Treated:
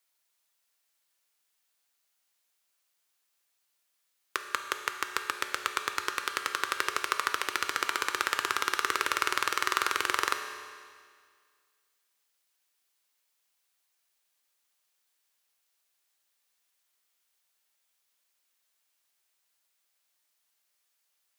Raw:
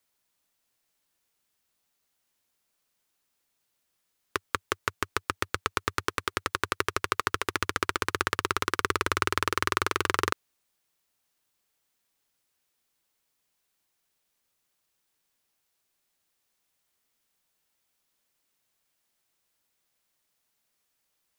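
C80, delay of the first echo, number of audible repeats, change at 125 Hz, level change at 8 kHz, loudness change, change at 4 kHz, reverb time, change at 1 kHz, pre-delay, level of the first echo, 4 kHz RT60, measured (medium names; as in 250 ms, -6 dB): 8.5 dB, no echo, no echo, under -15 dB, +1.0 dB, -1.0 dB, +0.5 dB, 1.9 s, -1.0 dB, 5 ms, no echo, 1.8 s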